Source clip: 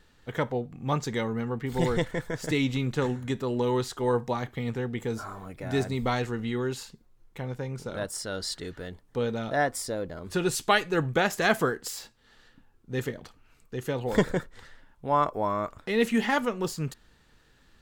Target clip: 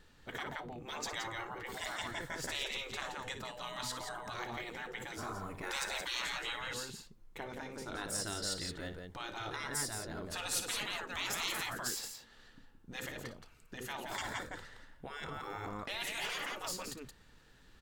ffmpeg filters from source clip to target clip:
-filter_complex "[0:a]asettb=1/sr,asplit=3[a][b][c];[a]atrim=end=5.634[d];[b]atrim=start=5.63:end=6.56,asetpts=PTS-STARTPTS,afade=t=in:d=0.004:c=qsin,afade=t=out:st=0.926:d=0.004:c=qsin,acontrast=70[e];[c]atrim=start=6.556[f];[d][e]acrossfade=d=0.004:c1=hsin:c2=qsin[g];[g][f]acrossfade=d=0.004:c1=qsin:c2=hsin,aecho=1:1:58|172:0.237|0.422,afftfilt=real='re*lt(hypot(re,im),0.0794)':imag='im*lt(hypot(re,im),0.0794)':win_size=1024:overlap=0.75,volume=-2dB"

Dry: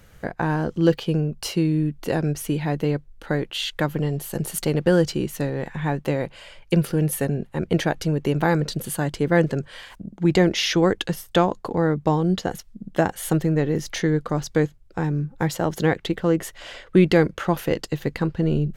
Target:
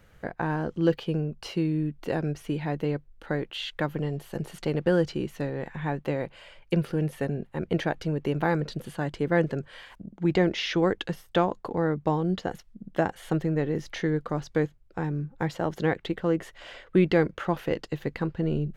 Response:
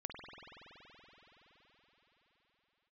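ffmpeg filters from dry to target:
-filter_complex "[0:a]bass=f=250:g=-2,treble=f=4k:g=-7,acrossover=split=5900[a][b];[b]acompressor=threshold=-49dB:ratio=4:attack=1:release=60[c];[a][c]amix=inputs=2:normalize=0,volume=-4.5dB"

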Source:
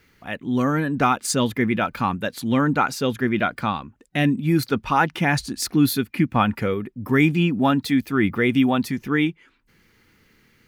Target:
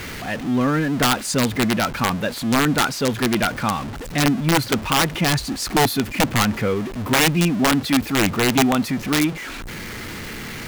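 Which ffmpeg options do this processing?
-af "aeval=exprs='val(0)+0.5*0.0531*sgn(val(0))':c=same,highshelf=f=6.1k:g=-6,aeval=exprs='(mod(3.35*val(0)+1,2)-1)/3.35':c=same"

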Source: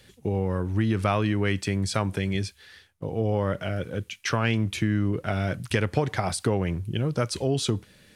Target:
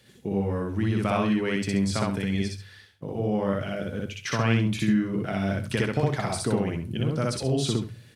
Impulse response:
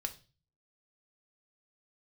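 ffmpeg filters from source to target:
-filter_complex "[0:a]highpass=73,equalizer=f=210:w=5:g=3,bandreject=f=50:t=h:w=6,bandreject=f=100:t=h:w=6,aecho=1:1:61.22|131.2:1|0.282,asplit=2[a][b];[1:a]atrim=start_sample=2205,lowshelf=f=230:g=6[c];[b][c]afir=irnorm=-1:irlink=0,volume=-1.5dB[d];[a][d]amix=inputs=2:normalize=0,volume=-9dB"

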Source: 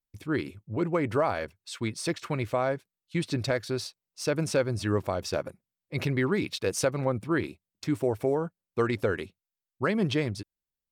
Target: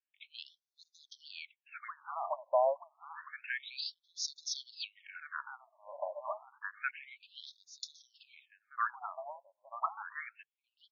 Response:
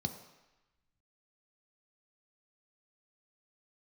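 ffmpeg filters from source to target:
-filter_complex "[0:a]bandreject=f=2k:w=8.7,asplit=2[a][b];[b]adelay=937,lowpass=f=1.2k:p=1,volume=-8dB,asplit=2[c][d];[d]adelay=937,lowpass=f=1.2k:p=1,volume=0.51,asplit=2[e][f];[f]adelay=937,lowpass=f=1.2k:p=1,volume=0.51,asplit=2[g][h];[h]adelay=937,lowpass=f=1.2k:p=1,volume=0.51,asplit=2[i][j];[j]adelay=937,lowpass=f=1.2k:p=1,volume=0.51,asplit=2[k][l];[l]adelay=937,lowpass=f=1.2k:p=1,volume=0.51[m];[a][c][e][g][i][k][m]amix=inputs=7:normalize=0,afftfilt=real='re*between(b*sr/1024,750*pow(5000/750,0.5+0.5*sin(2*PI*0.29*pts/sr))/1.41,750*pow(5000/750,0.5+0.5*sin(2*PI*0.29*pts/sr))*1.41)':imag='im*between(b*sr/1024,750*pow(5000/750,0.5+0.5*sin(2*PI*0.29*pts/sr))/1.41,750*pow(5000/750,0.5+0.5*sin(2*PI*0.29*pts/sr))*1.41)':win_size=1024:overlap=0.75,volume=1.5dB"

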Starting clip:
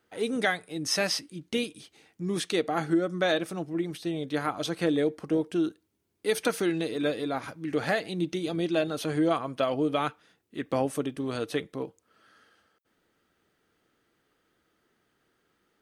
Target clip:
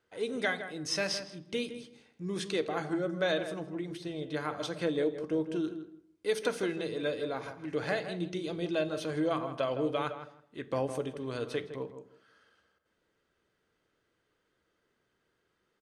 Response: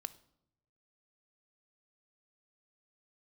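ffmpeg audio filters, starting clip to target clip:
-filter_complex "[0:a]lowpass=8.5k,asplit=2[a][b];[b]adelay=161,lowpass=f=1.9k:p=1,volume=-9.5dB,asplit=2[c][d];[d]adelay=161,lowpass=f=1.9k:p=1,volume=0.19,asplit=2[e][f];[f]adelay=161,lowpass=f=1.9k:p=1,volume=0.19[g];[a][c][e][g]amix=inputs=4:normalize=0[h];[1:a]atrim=start_sample=2205,afade=t=out:st=0.42:d=0.01,atrim=end_sample=18963,asetrate=52920,aresample=44100[i];[h][i]afir=irnorm=-1:irlink=0"

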